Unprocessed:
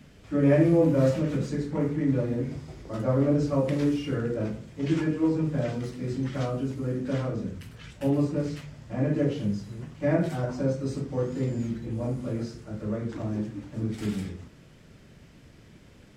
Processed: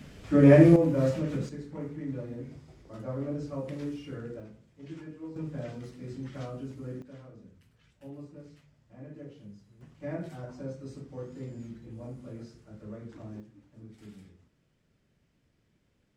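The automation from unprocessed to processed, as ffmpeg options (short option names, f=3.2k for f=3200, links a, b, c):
-af "asetnsamples=n=441:p=0,asendcmd='0.76 volume volume -4dB;1.49 volume volume -11dB;4.4 volume volume -17.5dB;5.36 volume volume -9.5dB;7.02 volume volume -20dB;9.81 volume volume -12dB;13.4 volume volume -19dB',volume=4dB"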